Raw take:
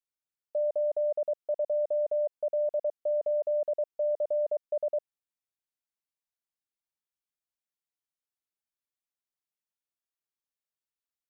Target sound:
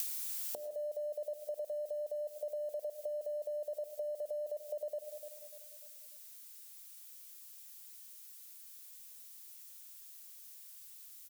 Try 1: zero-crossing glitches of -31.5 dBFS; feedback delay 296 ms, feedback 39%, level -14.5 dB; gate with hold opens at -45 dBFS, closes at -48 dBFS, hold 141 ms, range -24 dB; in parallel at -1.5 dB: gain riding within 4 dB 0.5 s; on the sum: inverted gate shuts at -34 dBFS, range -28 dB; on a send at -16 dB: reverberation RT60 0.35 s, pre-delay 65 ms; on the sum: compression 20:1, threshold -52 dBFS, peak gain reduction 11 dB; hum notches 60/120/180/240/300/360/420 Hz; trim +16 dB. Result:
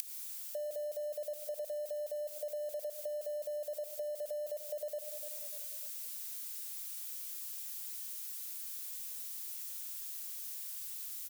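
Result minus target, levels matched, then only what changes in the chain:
zero-crossing glitches: distortion +10 dB
change: zero-crossing glitches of -42 dBFS

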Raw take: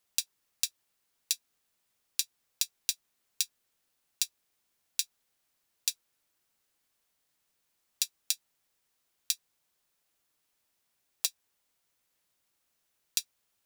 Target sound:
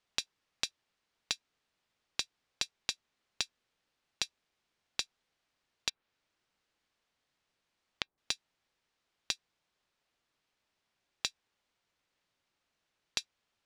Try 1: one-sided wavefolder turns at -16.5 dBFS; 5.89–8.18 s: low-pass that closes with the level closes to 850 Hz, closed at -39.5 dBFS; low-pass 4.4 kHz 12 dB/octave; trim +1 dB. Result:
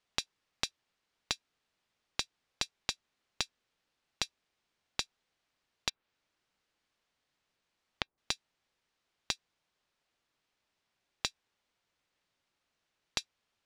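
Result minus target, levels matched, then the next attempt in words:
one-sided wavefolder: distortion +4 dB
one-sided wavefolder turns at -10.5 dBFS; 5.89–8.18 s: low-pass that closes with the level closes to 850 Hz, closed at -39.5 dBFS; low-pass 4.4 kHz 12 dB/octave; trim +1 dB

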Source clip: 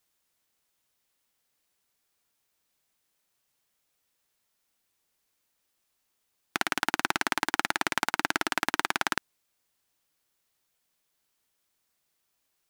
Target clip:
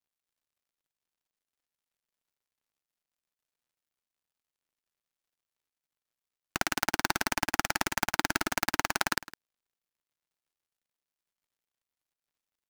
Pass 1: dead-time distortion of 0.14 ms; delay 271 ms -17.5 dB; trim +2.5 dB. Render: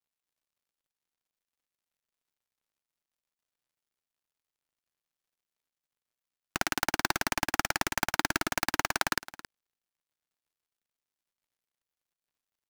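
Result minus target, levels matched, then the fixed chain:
echo 112 ms late
dead-time distortion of 0.14 ms; delay 159 ms -17.5 dB; trim +2.5 dB

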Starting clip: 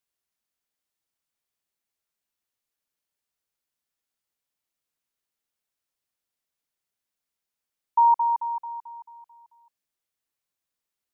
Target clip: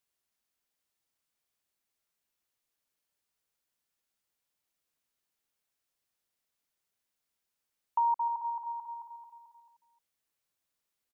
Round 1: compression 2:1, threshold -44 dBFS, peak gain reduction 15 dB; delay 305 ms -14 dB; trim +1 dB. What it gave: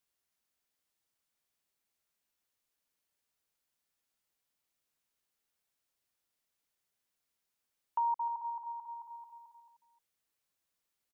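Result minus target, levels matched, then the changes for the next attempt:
compression: peak gain reduction +4 dB
change: compression 2:1, threshold -36 dBFS, peak gain reduction 11 dB

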